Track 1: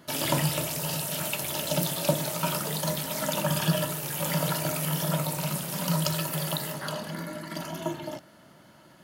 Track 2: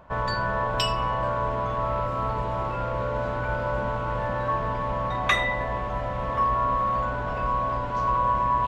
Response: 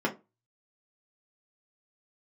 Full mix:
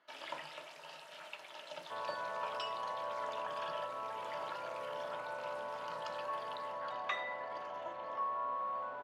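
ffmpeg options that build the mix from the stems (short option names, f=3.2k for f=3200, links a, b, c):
-filter_complex "[0:a]volume=-12dB[a];[1:a]equalizer=f=1.8k:t=o:w=2.5:g=-11.5,adelay=1800,volume=-4dB[b];[a][b]amix=inputs=2:normalize=0,highpass=760,lowpass=2.8k"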